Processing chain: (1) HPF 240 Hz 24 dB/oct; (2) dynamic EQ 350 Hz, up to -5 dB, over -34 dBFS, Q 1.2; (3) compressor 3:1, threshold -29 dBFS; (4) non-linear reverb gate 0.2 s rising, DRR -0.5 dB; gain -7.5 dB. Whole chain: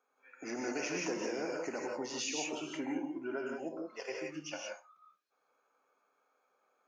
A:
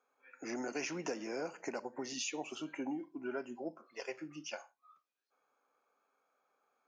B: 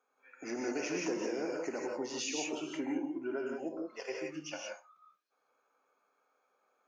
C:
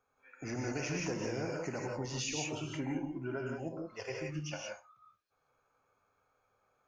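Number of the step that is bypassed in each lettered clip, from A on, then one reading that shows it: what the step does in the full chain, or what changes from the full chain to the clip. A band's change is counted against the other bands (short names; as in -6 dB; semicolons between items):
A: 4, 125 Hz band +1.5 dB; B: 2, 250 Hz band +2.5 dB; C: 1, 125 Hz band +16.5 dB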